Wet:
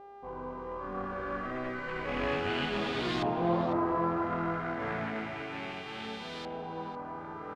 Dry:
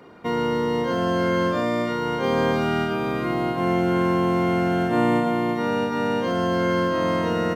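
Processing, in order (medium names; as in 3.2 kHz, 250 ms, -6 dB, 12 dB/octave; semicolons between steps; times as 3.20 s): sorted samples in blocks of 8 samples; Doppler pass-by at 3.18 s, 26 m/s, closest 22 m; treble shelf 4.5 kHz +7.5 dB; sample-rate reducer 5.9 kHz, jitter 0%; chorus 0.62 Hz, delay 16 ms, depth 5.7 ms; mains buzz 400 Hz, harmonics 36, -42 dBFS -2 dB/octave; LFO low-pass saw up 0.31 Hz 760–3900 Hz; echo from a far wall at 86 m, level -9 dB; trim -6.5 dB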